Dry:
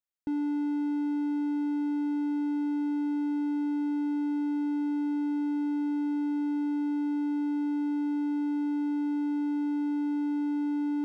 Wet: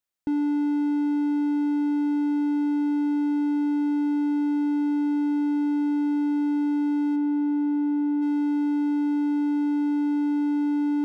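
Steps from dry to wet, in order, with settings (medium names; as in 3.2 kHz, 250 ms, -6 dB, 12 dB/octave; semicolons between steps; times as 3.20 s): 7.15–8.21 s: low-pass 1.6 kHz -> 1.1 kHz 6 dB/octave; trim +5.5 dB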